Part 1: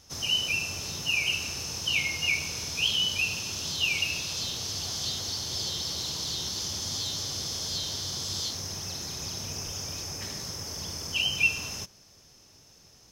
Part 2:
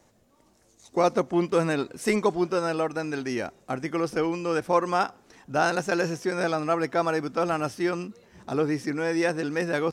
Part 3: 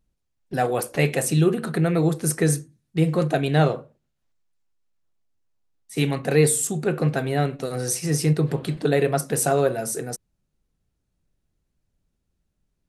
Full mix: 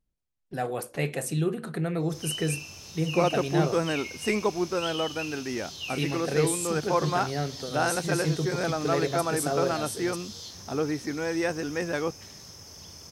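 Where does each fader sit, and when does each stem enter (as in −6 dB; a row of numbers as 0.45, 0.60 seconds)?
−9.5, −3.0, −8.0 decibels; 2.00, 2.20, 0.00 seconds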